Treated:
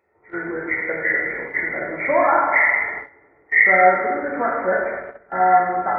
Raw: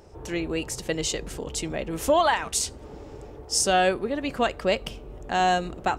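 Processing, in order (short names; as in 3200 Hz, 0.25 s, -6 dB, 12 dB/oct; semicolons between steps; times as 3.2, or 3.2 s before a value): nonlinear frequency compression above 1300 Hz 4:1; HPF 610 Hz 6 dB/oct; notch 1600 Hz, Q 8.9; plate-style reverb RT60 1.7 s, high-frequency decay 0.6×, DRR -3.5 dB; gate -31 dBFS, range -16 dB; gain +2 dB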